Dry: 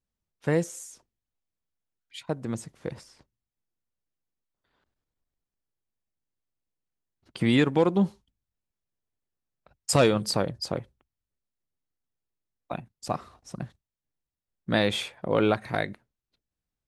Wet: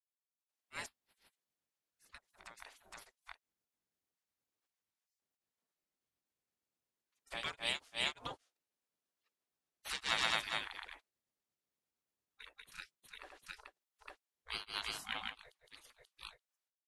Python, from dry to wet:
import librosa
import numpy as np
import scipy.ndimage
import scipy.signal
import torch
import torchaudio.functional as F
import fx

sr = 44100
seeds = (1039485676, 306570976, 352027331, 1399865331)

y = fx.spec_gate(x, sr, threshold_db=-25, keep='weak')
y = fx.granulator(y, sr, seeds[0], grain_ms=249.0, per_s=8.6, spray_ms=495.0, spread_st=0)
y = F.gain(torch.from_numpy(y), 2.5).numpy()